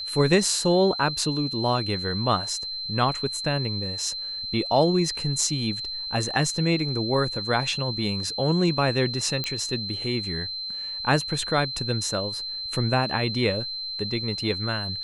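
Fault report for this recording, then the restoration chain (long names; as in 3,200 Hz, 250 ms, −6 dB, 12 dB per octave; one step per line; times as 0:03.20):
whistle 4,100 Hz −30 dBFS
0:09.44: click −13 dBFS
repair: click removal
notch filter 4,100 Hz, Q 30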